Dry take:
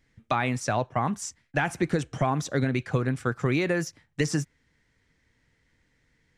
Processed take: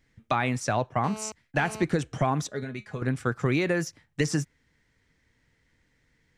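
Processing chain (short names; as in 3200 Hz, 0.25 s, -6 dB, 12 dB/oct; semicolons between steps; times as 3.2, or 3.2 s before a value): 1.04–1.84 GSM buzz -40 dBFS; 2.47–3.02 resonator 210 Hz, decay 0.15 s, harmonics all, mix 80%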